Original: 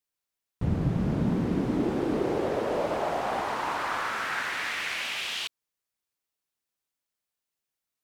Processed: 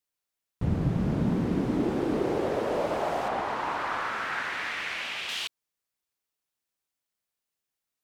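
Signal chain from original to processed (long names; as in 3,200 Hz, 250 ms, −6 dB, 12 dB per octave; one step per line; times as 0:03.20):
0:03.28–0:05.29: low-pass filter 3,500 Hz 6 dB per octave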